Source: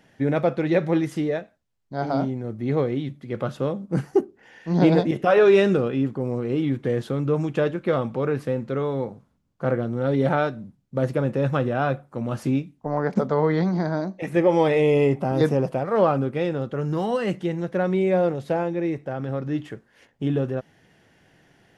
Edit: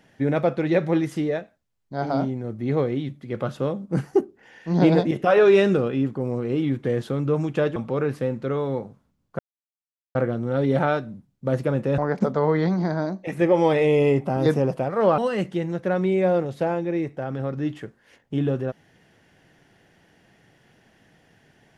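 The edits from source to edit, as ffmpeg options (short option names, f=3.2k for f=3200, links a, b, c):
-filter_complex "[0:a]asplit=5[a][b][c][d][e];[a]atrim=end=7.762[f];[b]atrim=start=8.018:end=9.65,asetpts=PTS-STARTPTS,afade=t=out:st=1.628:d=0.004:c=hsin,apad=pad_dur=0.76[g];[c]atrim=start=9.65:end=11.482,asetpts=PTS-STARTPTS,afade=t=in:d=0.004:c=hsin[h];[d]atrim=start=12.928:end=16.132[i];[e]atrim=start=17.068[j];[g][h]concat=n=2:v=0:a=1[k];[f][k]acrossfade=d=0.004:c1=hsin:c2=hsin[l];[l][i]acrossfade=d=0.004:c1=hsin:c2=hsin[m];[m][j]acrossfade=d=0.004:c1=hsin:c2=hsin"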